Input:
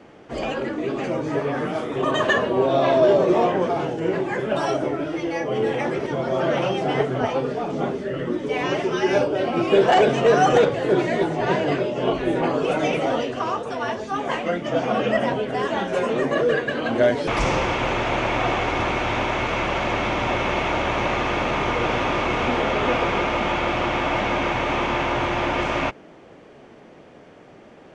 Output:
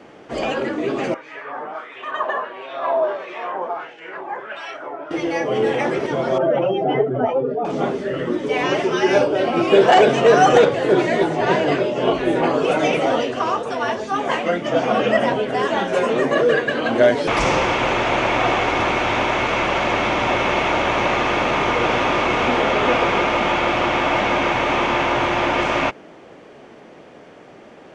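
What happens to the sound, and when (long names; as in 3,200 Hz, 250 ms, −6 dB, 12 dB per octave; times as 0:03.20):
0:01.14–0:05.11: auto-filter band-pass sine 1.5 Hz 850–2,400 Hz
0:06.38–0:07.65: expanding power law on the bin magnitudes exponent 1.7
whole clip: low-shelf EQ 150 Hz −8 dB; level +4.5 dB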